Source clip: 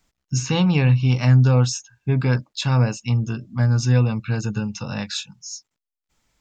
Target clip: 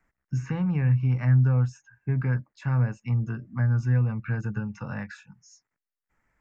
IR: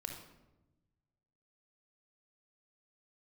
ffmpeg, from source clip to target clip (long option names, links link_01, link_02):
-filter_complex "[0:a]acrossover=split=180[link_01][link_02];[link_02]acompressor=threshold=-33dB:ratio=3[link_03];[link_01][link_03]amix=inputs=2:normalize=0,highshelf=frequency=2600:width_type=q:width=3:gain=-12,volume=-4dB"